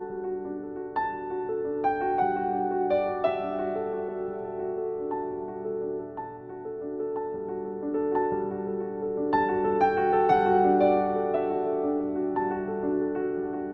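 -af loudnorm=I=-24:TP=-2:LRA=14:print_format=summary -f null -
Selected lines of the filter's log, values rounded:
Input Integrated:    -27.8 LUFS
Input True Peak:     -10.6 dBTP
Input LRA:             8.8 LU
Input Threshold:     -37.8 LUFS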